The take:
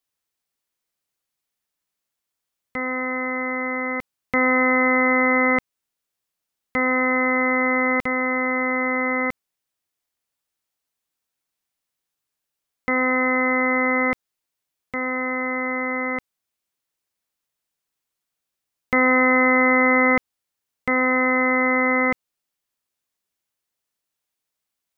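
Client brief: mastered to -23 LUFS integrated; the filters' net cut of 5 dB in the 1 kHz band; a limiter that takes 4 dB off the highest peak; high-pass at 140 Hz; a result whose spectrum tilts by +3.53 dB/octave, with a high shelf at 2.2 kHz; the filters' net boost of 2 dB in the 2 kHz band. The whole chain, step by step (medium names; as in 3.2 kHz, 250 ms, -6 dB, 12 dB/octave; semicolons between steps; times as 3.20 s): high-pass 140 Hz; peaking EQ 1 kHz -7.5 dB; peaking EQ 2 kHz +6.5 dB; treble shelf 2.2 kHz -6.5 dB; trim -2.5 dB; peak limiter -14.5 dBFS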